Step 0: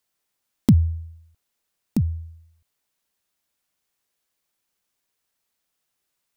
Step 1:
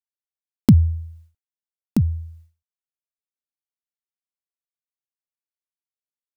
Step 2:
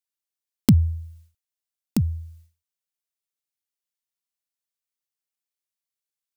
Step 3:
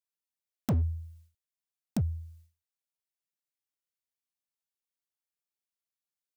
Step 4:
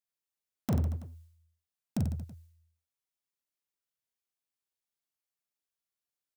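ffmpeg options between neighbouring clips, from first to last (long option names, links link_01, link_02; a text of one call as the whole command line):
ffmpeg -i in.wav -af "agate=range=-33dB:threshold=-46dB:ratio=3:detection=peak,volume=3dB" out.wav
ffmpeg -i in.wav -af "highshelf=frequency=2100:gain=9.5,volume=-3.5dB" out.wav
ffmpeg -i in.wav -af "volume=17.5dB,asoftclip=hard,volume=-17.5dB,volume=-6dB" out.wav
ffmpeg -i in.wav -af "aecho=1:1:40|90|152.5|230.6|328.3:0.631|0.398|0.251|0.158|0.1,volume=-2.5dB" out.wav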